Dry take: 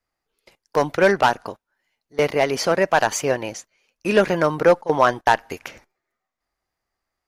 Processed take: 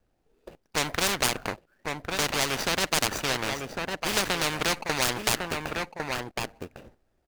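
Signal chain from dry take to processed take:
running median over 41 samples
single-tap delay 1,103 ms −14 dB
every bin compressed towards the loudest bin 4 to 1

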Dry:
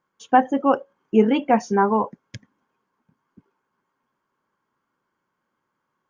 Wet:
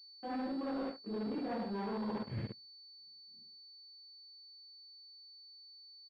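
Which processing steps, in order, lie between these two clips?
random phases in long frames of 200 ms
spectral tilt −3.5 dB per octave
on a send: repeating echo 70 ms, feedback 36%, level −7.5 dB
on the sum: noise gate −37 dBFS, range −16 dB
leveller curve on the samples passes 3
high-pass filter 500 Hz 6 dB per octave
parametric band 970 Hz −8.5 dB 1.7 octaves
reversed playback
downward compressor 16 to 1, threshold −36 dBFS, peak gain reduction 27 dB
reversed playback
soft clipping −33.5 dBFS, distortion −19 dB
switching amplifier with a slow clock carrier 4,500 Hz
level +2 dB

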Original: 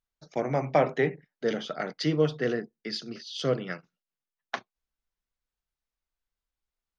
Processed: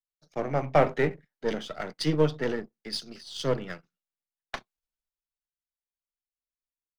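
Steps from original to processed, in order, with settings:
gain on one half-wave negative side −7 dB
multiband upward and downward expander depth 40%
level +1.5 dB

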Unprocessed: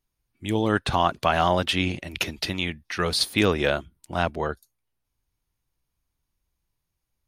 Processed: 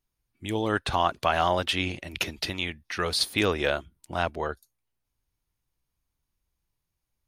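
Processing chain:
dynamic equaliser 170 Hz, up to −6 dB, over −37 dBFS, Q 0.92
level −2 dB

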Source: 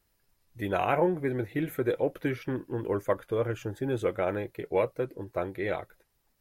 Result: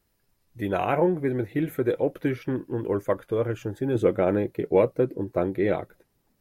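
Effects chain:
parametric band 230 Hz +5 dB 2.5 octaves, from 0:03.95 +12 dB

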